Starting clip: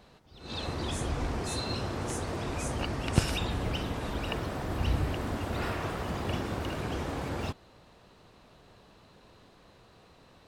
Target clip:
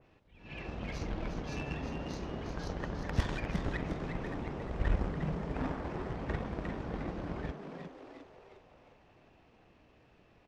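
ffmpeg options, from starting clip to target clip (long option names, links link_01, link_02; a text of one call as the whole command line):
ffmpeg -i in.wav -filter_complex "[0:a]lowpass=9700,bandreject=frequency=363.9:width_type=h:width=4,bandreject=frequency=727.8:width_type=h:width=4,asplit=2[link_01][link_02];[link_02]acrusher=bits=3:mix=0:aa=0.5,volume=-3dB[link_03];[link_01][link_03]amix=inputs=2:normalize=0,aeval=exprs='0.75*(cos(1*acos(clip(val(0)/0.75,-1,1)))-cos(1*PI/2))+0.0119*(cos(7*acos(clip(val(0)/0.75,-1,1)))-cos(7*PI/2))':channel_layout=same,asoftclip=type=hard:threshold=-15dB,asetrate=28595,aresample=44100,atempo=1.54221,asplit=7[link_04][link_05][link_06][link_07][link_08][link_09][link_10];[link_05]adelay=355,afreqshift=110,volume=-7dB[link_11];[link_06]adelay=710,afreqshift=220,volume=-13.2dB[link_12];[link_07]adelay=1065,afreqshift=330,volume=-19.4dB[link_13];[link_08]adelay=1420,afreqshift=440,volume=-25.6dB[link_14];[link_09]adelay=1775,afreqshift=550,volume=-31.8dB[link_15];[link_10]adelay=2130,afreqshift=660,volume=-38dB[link_16];[link_04][link_11][link_12][link_13][link_14][link_15][link_16]amix=inputs=7:normalize=0,adynamicequalizer=threshold=0.00316:dfrequency=2500:dqfactor=0.7:tfrequency=2500:tqfactor=0.7:attack=5:release=100:ratio=0.375:range=3:mode=cutabove:tftype=highshelf,volume=-5dB" out.wav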